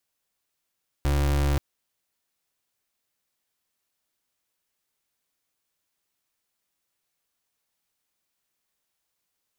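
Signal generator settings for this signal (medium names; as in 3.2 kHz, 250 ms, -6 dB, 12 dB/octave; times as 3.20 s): pulse 71 Hz, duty 33% -22.5 dBFS 0.53 s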